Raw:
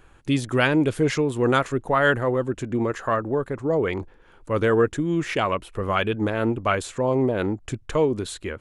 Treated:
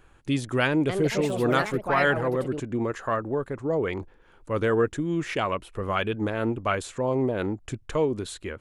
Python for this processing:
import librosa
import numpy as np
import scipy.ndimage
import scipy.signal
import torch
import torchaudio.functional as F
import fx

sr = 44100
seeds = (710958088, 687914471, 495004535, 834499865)

y = fx.echo_pitch(x, sr, ms=222, semitones=4, count=2, db_per_echo=-6.0, at=(0.67, 2.82))
y = F.gain(torch.from_numpy(y), -3.5).numpy()